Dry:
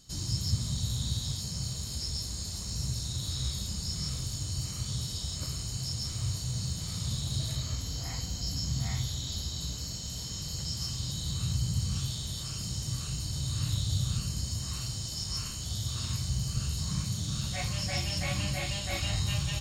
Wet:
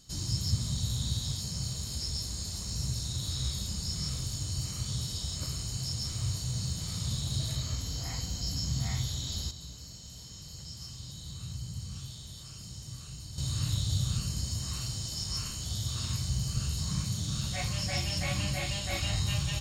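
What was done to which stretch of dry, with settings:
0:09.51–0:13.38: clip gain −9 dB

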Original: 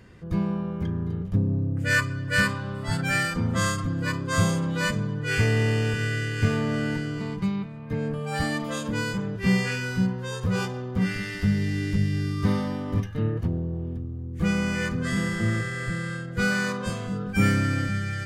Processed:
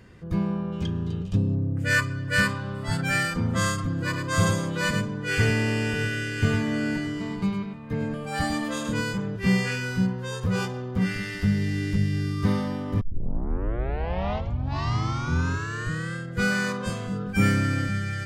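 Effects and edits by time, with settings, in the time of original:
0:00.72–0:01.55: gain on a spectral selection 2,400–9,200 Hz +12 dB
0:03.90–0:09.01: single-tap delay 104 ms −6 dB
0:13.01: tape start 3.14 s

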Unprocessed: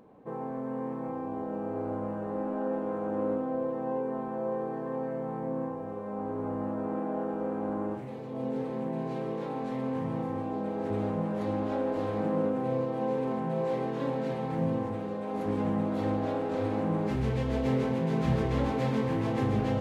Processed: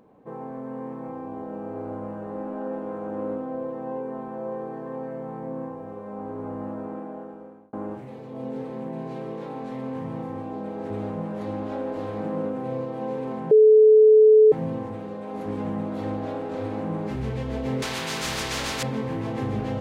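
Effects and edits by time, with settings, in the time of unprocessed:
0:06.73–0:07.73: fade out
0:13.51–0:14.52: beep over 432 Hz −10 dBFS
0:17.82–0:18.83: every bin compressed towards the loudest bin 4 to 1

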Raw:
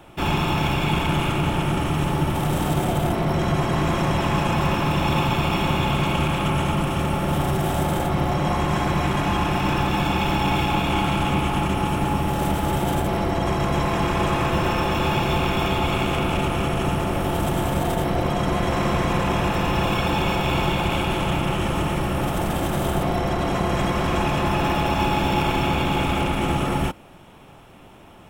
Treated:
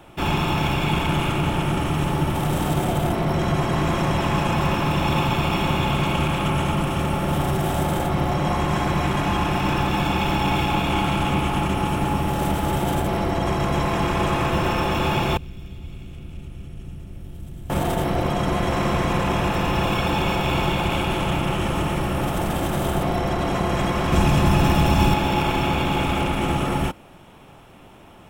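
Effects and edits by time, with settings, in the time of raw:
0:15.37–0:17.70: guitar amp tone stack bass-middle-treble 10-0-1
0:24.12–0:25.14: bass and treble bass +8 dB, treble +6 dB

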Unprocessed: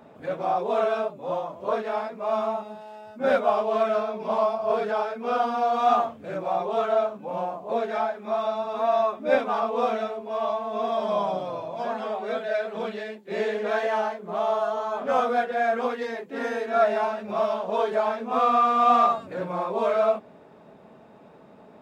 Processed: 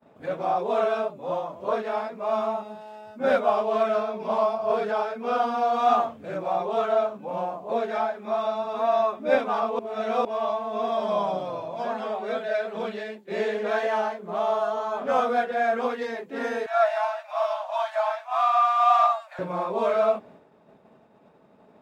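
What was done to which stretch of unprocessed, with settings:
0:09.79–0:10.25: reverse
0:16.66–0:19.39: Butterworth high-pass 620 Hz 96 dB per octave
whole clip: downward expander −44 dBFS

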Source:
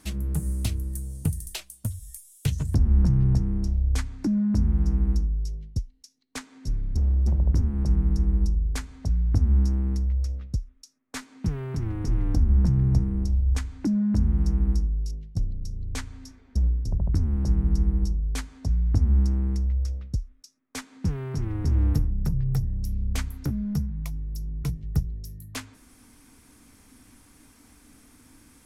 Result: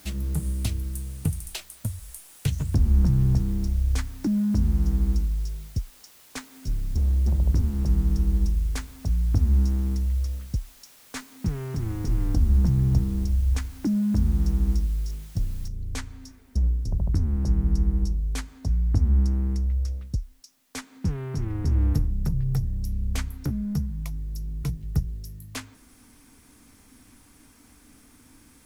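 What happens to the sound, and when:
0:15.68: noise floor change −53 dB −68 dB

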